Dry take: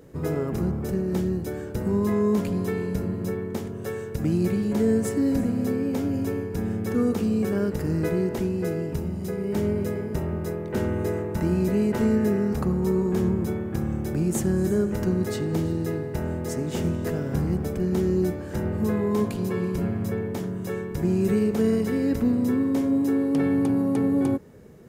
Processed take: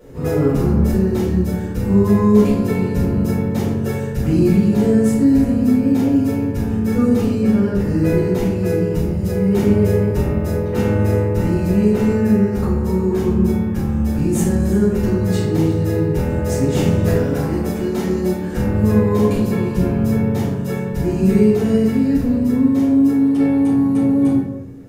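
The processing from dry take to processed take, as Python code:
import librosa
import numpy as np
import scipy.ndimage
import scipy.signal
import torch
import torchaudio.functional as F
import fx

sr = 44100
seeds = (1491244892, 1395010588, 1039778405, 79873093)

y = fx.high_shelf(x, sr, hz=fx.line((7.39, 8000.0), (7.84, 4900.0)), db=-8.0, at=(7.39, 7.84), fade=0.02)
y = fx.highpass(y, sr, hz=320.0, slope=6, at=(17.14, 18.51))
y = fx.rider(y, sr, range_db=10, speed_s=2.0)
y = fx.room_shoebox(y, sr, seeds[0], volume_m3=160.0, walls='mixed', distance_m=4.5)
y = y * 10.0 ** (-7.0 / 20.0)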